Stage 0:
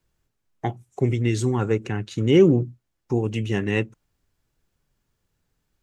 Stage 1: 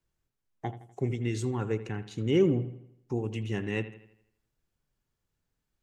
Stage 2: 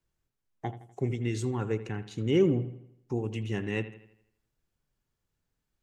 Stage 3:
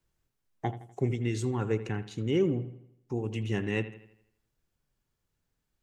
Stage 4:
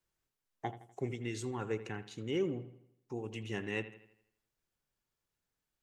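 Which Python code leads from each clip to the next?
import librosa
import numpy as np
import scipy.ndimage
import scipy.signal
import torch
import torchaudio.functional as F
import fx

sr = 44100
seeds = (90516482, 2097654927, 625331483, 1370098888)

y1 = fx.echo_bbd(x, sr, ms=82, stages=2048, feedback_pct=47, wet_db=-14.0)
y1 = F.gain(torch.from_numpy(y1), -8.5).numpy()
y2 = y1
y3 = fx.rider(y2, sr, range_db=3, speed_s=0.5)
y4 = fx.low_shelf(y3, sr, hz=270.0, db=-9.5)
y4 = F.gain(torch.from_numpy(y4), -3.5).numpy()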